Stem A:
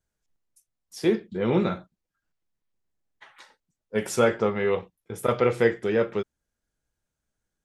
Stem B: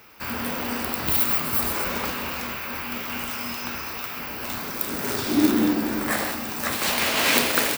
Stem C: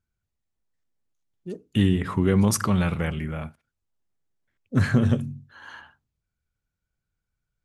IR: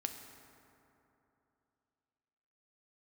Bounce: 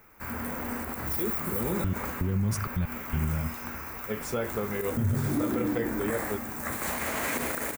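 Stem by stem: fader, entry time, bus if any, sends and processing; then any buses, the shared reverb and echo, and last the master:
−6.5 dB, 0.15 s, no send, no processing
−6.0 dB, 0.00 s, no send, flat-topped bell 3,800 Hz −11.5 dB 1.3 octaves
−8.5 dB, 0.00 s, no send, gate pattern "x...xxxxx." 163 BPM; low-shelf EQ 250 Hz +10.5 dB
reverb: not used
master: low-shelf EQ 84 Hz +12 dB; brickwall limiter −19.5 dBFS, peak gain reduction 12.5 dB

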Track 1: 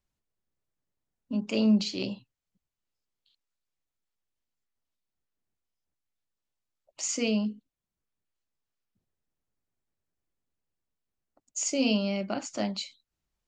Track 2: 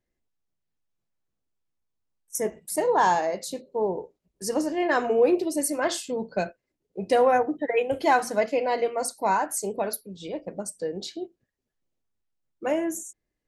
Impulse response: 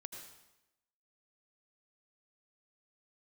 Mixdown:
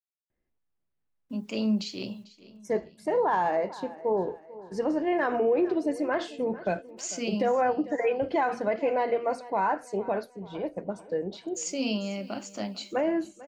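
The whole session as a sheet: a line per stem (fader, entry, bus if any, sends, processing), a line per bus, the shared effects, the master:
−3.5 dB, 0.00 s, no send, echo send −19 dB, bit reduction 11 bits
+0.5 dB, 0.30 s, no send, echo send −19.5 dB, low-pass filter 2,400 Hz 12 dB per octave; brickwall limiter −15 dBFS, peak gain reduction 5.5 dB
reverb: not used
echo: repeating echo 445 ms, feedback 43%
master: brickwall limiter −17.5 dBFS, peak gain reduction 4.5 dB

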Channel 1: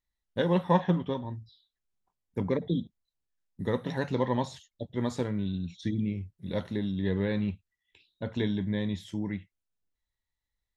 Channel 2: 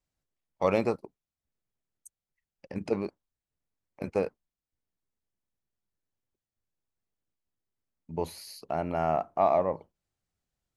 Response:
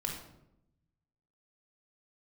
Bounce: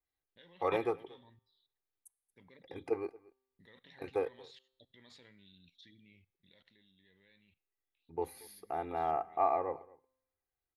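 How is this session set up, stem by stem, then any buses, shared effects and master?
0:06.06 −14.5 dB → 0:06.67 −22.5 dB, 0.00 s, no send, no echo send, flat-topped bell 2,900 Hz +14.5 dB; output level in coarse steps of 20 dB
−3.5 dB, 0.00 s, no send, echo send −23 dB, flat-topped bell 4,800 Hz −12 dB; comb filter 2.5 ms, depth 86%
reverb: not used
echo: single-tap delay 230 ms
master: low-shelf EQ 230 Hz −8.5 dB; tuned comb filter 130 Hz, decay 0.95 s, harmonics all, mix 30%

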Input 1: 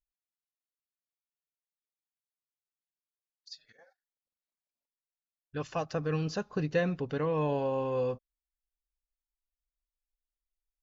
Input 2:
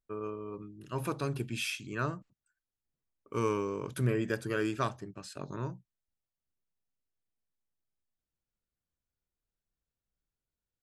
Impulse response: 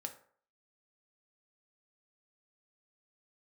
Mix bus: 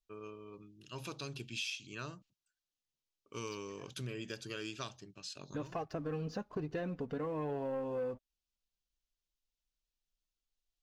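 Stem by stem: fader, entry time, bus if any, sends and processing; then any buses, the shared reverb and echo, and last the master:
−1.5 dB, 0.00 s, no send, tilt shelving filter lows +5 dB, about 1,500 Hz; flanger 1.2 Hz, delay 2.4 ms, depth 2.1 ms, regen +27%; leveller curve on the samples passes 1
−10.0 dB, 0.00 s, no send, flat-topped bell 4,200 Hz +14 dB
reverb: not used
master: downward compressor 3 to 1, threshold −38 dBFS, peak gain reduction 10 dB

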